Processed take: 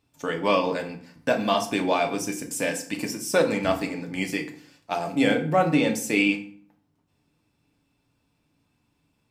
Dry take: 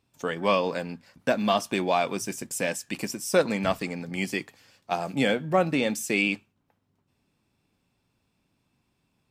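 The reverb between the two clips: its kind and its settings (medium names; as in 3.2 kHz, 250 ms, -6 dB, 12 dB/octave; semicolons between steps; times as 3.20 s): FDN reverb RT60 0.52 s, low-frequency decay 1.35×, high-frequency decay 0.75×, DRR 3.5 dB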